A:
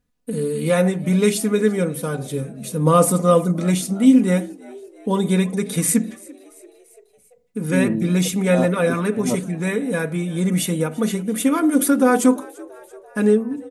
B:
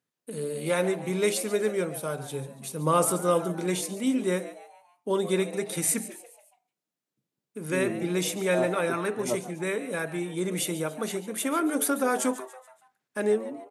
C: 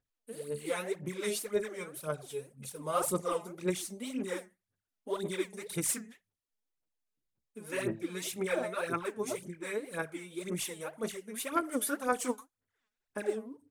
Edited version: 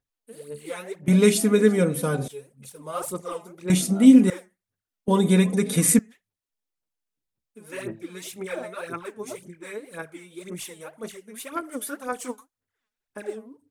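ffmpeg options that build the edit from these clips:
-filter_complex "[0:a]asplit=3[s0][s1][s2];[2:a]asplit=4[s3][s4][s5][s6];[s3]atrim=end=1.082[s7];[s0]atrim=start=1.078:end=2.282[s8];[s4]atrim=start=2.278:end=3.702[s9];[s1]atrim=start=3.698:end=4.302[s10];[s5]atrim=start=4.298:end=5.082[s11];[s2]atrim=start=5.078:end=5.992[s12];[s6]atrim=start=5.988[s13];[s7][s8]acrossfade=d=0.004:c1=hsin:c2=hsin[s14];[s14][s9]acrossfade=d=0.004:c1=hsin:c2=hsin[s15];[s15][s10]acrossfade=d=0.004:c1=hsin:c2=hsin[s16];[s16][s11]acrossfade=d=0.004:c1=hsin:c2=hsin[s17];[s17][s12]acrossfade=d=0.004:c1=hsin:c2=hsin[s18];[s18][s13]acrossfade=d=0.004:c1=hsin:c2=hsin"

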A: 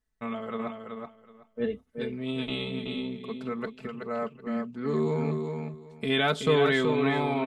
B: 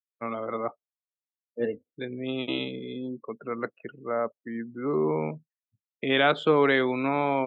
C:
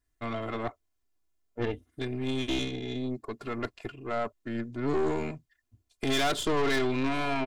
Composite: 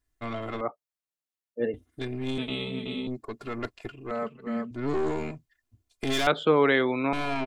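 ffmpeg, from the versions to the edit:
-filter_complex "[1:a]asplit=2[s0][s1];[0:a]asplit=2[s2][s3];[2:a]asplit=5[s4][s5][s6][s7][s8];[s4]atrim=end=0.612[s9];[s0]atrim=start=0.608:end=1.742[s10];[s5]atrim=start=1.738:end=2.382[s11];[s2]atrim=start=2.378:end=3.072[s12];[s6]atrim=start=3.068:end=4.112[s13];[s3]atrim=start=4.108:end=4.712[s14];[s7]atrim=start=4.708:end=6.272[s15];[s1]atrim=start=6.268:end=7.132[s16];[s8]atrim=start=7.128[s17];[s9][s10]acrossfade=d=0.004:c1=hsin:c2=hsin[s18];[s18][s11]acrossfade=d=0.004:c1=hsin:c2=hsin[s19];[s19][s12]acrossfade=d=0.004:c1=hsin:c2=hsin[s20];[s20][s13]acrossfade=d=0.004:c1=hsin:c2=hsin[s21];[s21][s14]acrossfade=d=0.004:c1=hsin:c2=hsin[s22];[s22][s15]acrossfade=d=0.004:c1=hsin:c2=hsin[s23];[s23][s16]acrossfade=d=0.004:c1=hsin:c2=hsin[s24];[s24][s17]acrossfade=d=0.004:c1=hsin:c2=hsin"

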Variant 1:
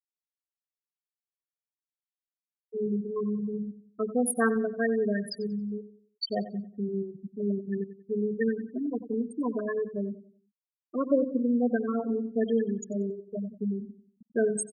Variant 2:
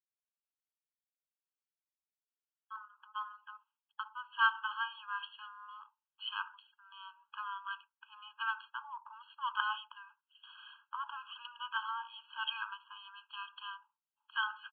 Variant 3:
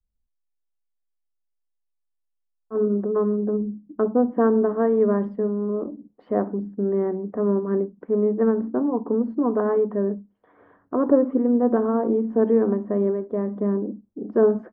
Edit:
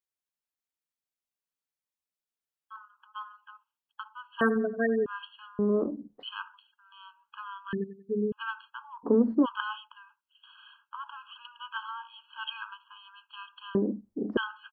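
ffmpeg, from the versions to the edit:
-filter_complex "[0:a]asplit=2[s0][s1];[2:a]asplit=3[s2][s3][s4];[1:a]asplit=6[s5][s6][s7][s8][s9][s10];[s5]atrim=end=4.412[s11];[s0]atrim=start=4.408:end=5.062[s12];[s6]atrim=start=5.058:end=5.592[s13];[s2]atrim=start=5.588:end=6.232[s14];[s7]atrim=start=6.228:end=7.732[s15];[s1]atrim=start=7.728:end=8.322[s16];[s8]atrim=start=8.318:end=9.05[s17];[s3]atrim=start=9.03:end=9.46[s18];[s9]atrim=start=9.44:end=13.752[s19];[s4]atrim=start=13.748:end=14.372[s20];[s10]atrim=start=14.368[s21];[s11][s12]acrossfade=d=0.004:c1=hsin:c2=hsin[s22];[s22][s13]acrossfade=d=0.004:c1=hsin:c2=hsin[s23];[s23][s14]acrossfade=d=0.004:c1=hsin:c2=hsin[s24];[s24][s15]acrossfade=d=0.004:c1=hsin:c2=hsin[s25];[s25][s16]acrossfade=d=0.004:c1=hsin:c2=hsin[s26];[s26][s17]acrossfade=d=0.004:c1=hsin:c2=hsin[s27];[s27][s18]acrossfade=d=0.02:c1=tri:c2=tri[s28];[s28][s19]acrossfade=d=0.02:c1=tri:c2=tri[s29];[s29][s20]acrossfade=d=0.004:c1=hsin:c2=hsin[s30];[s30][s21]acrossfade=d=0.004:c1=hsin:c2=hsin"

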